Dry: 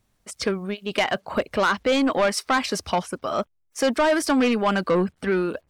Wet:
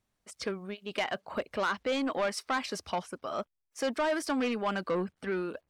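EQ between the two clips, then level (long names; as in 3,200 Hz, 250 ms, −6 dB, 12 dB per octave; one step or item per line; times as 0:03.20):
low-shelf EQ 170 Hz −5.5 dB
high-shelf EQ 8,100 Hz −4 dB
−9.0 dB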